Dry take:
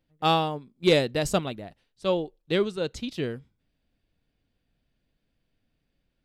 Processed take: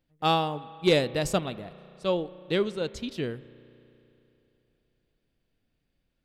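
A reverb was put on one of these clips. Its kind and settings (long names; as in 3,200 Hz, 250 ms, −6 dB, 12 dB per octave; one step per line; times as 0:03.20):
spring reverb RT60 3.2 s, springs 33 ms, chirp 60 ms, DRR 17 dB
level −1.5 dB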